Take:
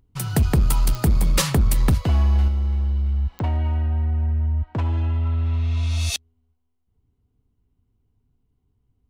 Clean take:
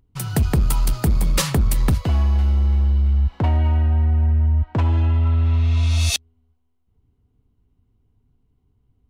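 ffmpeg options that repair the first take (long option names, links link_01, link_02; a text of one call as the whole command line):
ffmpeg -i in.wav -af "adeclick=threshold=4,asetnsamples=nb_out_samples=441:pad=0,asendcmd='2.48 volume volume 4.5dB',volume=0dB" out.wav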